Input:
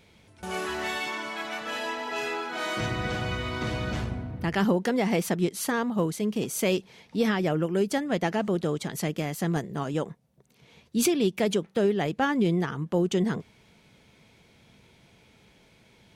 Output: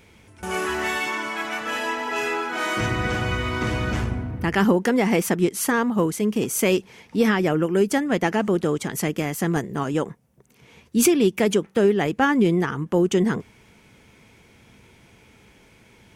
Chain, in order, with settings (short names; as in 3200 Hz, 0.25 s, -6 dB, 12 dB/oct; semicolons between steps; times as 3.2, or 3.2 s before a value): fifteen-band EQ 160 Hz -5 dB, 630 Hz -5 dB, 4000 Hz -8 dB; gain +7.5 dB